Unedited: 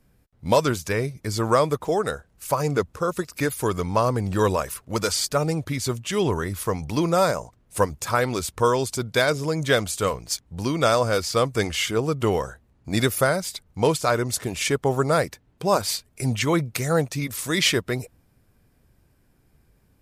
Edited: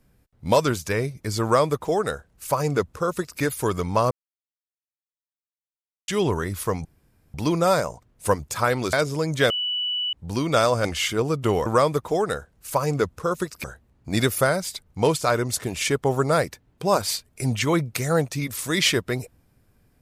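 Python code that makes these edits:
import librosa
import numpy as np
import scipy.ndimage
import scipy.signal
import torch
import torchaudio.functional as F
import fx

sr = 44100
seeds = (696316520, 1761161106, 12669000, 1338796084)

y = fx.edit(x, sr, fx.duplicate(start_s=1.43, length_s=1.98, to_s=12.44),
    fx.silence(start_s=4.11, length_s=1.97),
    fx.insert_room_tone(at_s=6.85, length_s=0.49),
    fx.cut(start_s=8.44, length_s=0.78),
    fx.bleep(start_s=9.79, length_s=0.63, hz=2960.0, db=-23.0),
    fx.cut(start_s=11.14, length_s=0.49), tone=tone)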